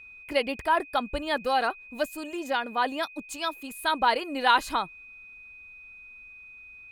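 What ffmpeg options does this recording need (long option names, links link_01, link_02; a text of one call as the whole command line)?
ffmpeg -i in.wav -af "bandreject=frequency=2500:width=30" out.wav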